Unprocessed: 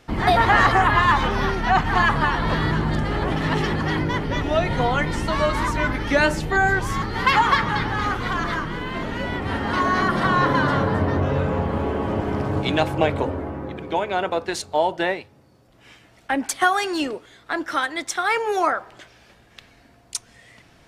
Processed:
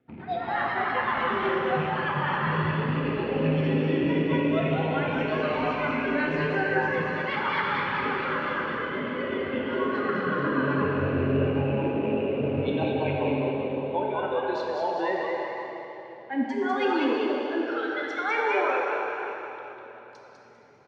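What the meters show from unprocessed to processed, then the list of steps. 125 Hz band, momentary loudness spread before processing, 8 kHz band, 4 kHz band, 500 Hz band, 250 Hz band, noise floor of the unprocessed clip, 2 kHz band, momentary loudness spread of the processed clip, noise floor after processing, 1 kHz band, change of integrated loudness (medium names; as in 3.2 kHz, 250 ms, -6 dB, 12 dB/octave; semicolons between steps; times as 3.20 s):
-5.5 dB, 9 LU, under -25 dB, -9.0 dB, -1.5 dB, -2.0 dB, -54 dBFS, -6.0 dB, 6 LU, -45 dBFS, -7.5 dB, -5.5 dB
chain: rattle on loud lows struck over -26 dBFS, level -19 dBFS; cabinet simulation 120–3100 Hz, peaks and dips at 130 Hz +5 dB, 240 Hz +7 dB, 580 Hz -4 dB, 1.1 kHz -5 dB, 1.7 kHz -4 dB, 2.8 kHz -5 dB; reverse; compression 10:1, threshold -22 dBFS, peak gain reduction 9 dB; reverse; rotary cabinet horn 8 Hz, later 0.85 Hz, at 17.00 s; on a send: frequency-shifting echo 199 ms, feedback 41%, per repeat +130 Hz, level -4 dB; on the sum: spectral noise reduction 12 dB; plate-style reverb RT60 3.9 s, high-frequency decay 0.95×, DRR -1.5 dB; tape noise reduction on one side only decoder only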